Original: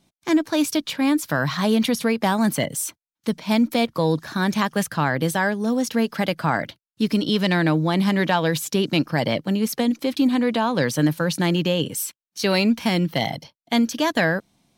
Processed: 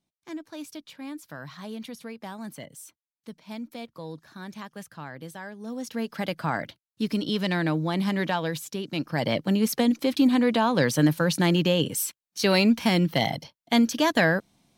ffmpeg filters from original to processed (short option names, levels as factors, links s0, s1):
-af "volume=1.88,afade=t=in:st=5.5:d=0.86:silence=0.251189,afade=t=out:st=8.26:d=0.61:silence=0.473151,afade=t=in:st=8.87:d=0.61:silence=0.266073"